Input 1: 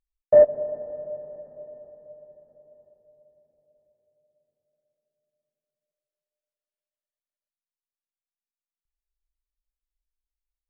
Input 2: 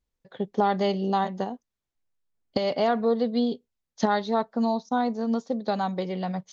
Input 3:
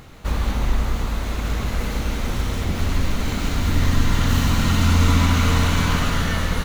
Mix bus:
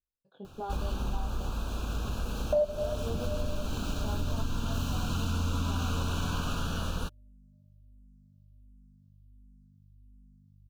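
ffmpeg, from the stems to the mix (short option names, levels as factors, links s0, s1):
-filter_complex "[0:a]aeval=exprs='val(0)+0.00178*(sin(2*PI*50*n/s)+sin(2*PI*2*50*n/s)/2+sin(2*PI*3*50*n/s)/3+sin(2*PI*4*50*n/s)/4+sin(2*PI*5*50*n/s)/5)':c=same,asplit=2[s0][s1];[s1]afreqshift=-1.4[s2];[s0][s2]amix=inputs=2:normalize=1,adelay=2200,volume=1.33[s3];[1:a]flanger=delay=19.5:depth=5.1:speed=0.39,volume=0.237[s4];[2:a]adelay=450,volume=0.398[s5];[s3][s4][s5]amix=inputs=3:normalize=0,asuperstop=centerf=2000:order=8:qfactor=2.5,acompressor=threshold=0.0398:ratio=3"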